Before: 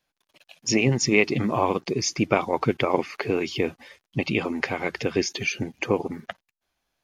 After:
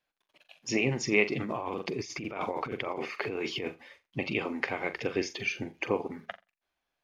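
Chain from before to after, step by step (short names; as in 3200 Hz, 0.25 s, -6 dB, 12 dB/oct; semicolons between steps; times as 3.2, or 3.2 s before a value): high shelf 2800 Hz +6 dB; flutter echo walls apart 7.4 m, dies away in 0.22 s; 1.4–3.68 negative-ratio compressor -27 dBFS, ratio -1; tone controls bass -5 dB, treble -13 dB; gain -5.5 dB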